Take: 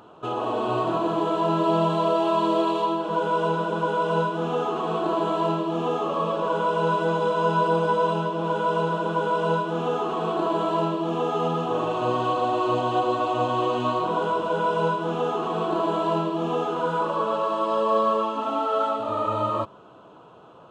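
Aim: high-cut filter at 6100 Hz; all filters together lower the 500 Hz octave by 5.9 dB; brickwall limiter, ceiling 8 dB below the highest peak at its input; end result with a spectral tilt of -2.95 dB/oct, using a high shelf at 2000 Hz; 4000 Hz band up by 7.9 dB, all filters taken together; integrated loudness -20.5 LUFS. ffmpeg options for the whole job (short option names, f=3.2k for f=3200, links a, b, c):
-af "lowpass=6.1k,equalizer=f=500:t=o:g=-8.5,highshelf=f=2k:g=8,equalizer=f=4k:t=o:g=3.5,volume=7.5dB,alimiter=limit=-12dB:level=0:latency=1"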